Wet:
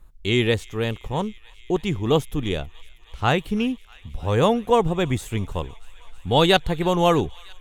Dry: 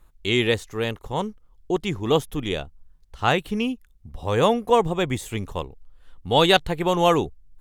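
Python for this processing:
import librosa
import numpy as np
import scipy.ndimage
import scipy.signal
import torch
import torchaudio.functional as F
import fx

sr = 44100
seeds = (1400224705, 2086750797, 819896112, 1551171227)

p1 = fx.low_shelf(x, sr, hz=210.0, db=7.0)
p2 = p1 + fx.echo_wet_highpass(p1, sr, ms=320, feedback_pct=85, hz=1600.0, wet_db=-22, dry=0)
y = p2 * 10.0 ** (-1.0 / 20.0)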